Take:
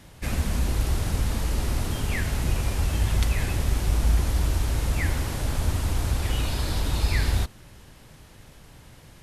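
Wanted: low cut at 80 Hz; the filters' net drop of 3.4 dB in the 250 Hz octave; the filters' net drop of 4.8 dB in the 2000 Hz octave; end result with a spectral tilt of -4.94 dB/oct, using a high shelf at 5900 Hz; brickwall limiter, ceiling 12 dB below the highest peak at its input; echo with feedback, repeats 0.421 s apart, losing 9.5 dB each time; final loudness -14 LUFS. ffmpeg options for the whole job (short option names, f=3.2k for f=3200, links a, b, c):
-af "highpass=80,equalizer=f=250:t=o:g=-4.5,equalizer=f=2k:t=o:g=-5,highshelf=f=5.9k:g=-7,alimiter=level_in=3.5dB:limit=-24dB:level=0:latency=1,volume=-3.5dB,aecho=1:1:421|842|1263|1684:0.335|0.111|0.0365|0.012,volume=22.5dB"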